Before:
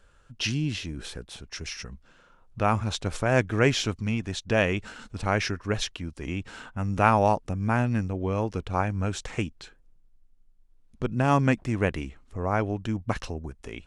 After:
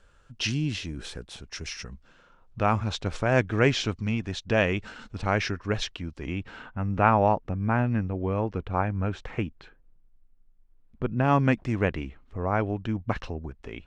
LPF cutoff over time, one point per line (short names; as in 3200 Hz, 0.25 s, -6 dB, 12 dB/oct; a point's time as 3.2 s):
1.69 s 9100 Hz
2.62 s 5400 Hz
6.04 s 5400 Hz
6.85 s 2400 Hz
11.09 s 2400 Hz
11.72 s 5600 Hz
11.96 s 3500 Hz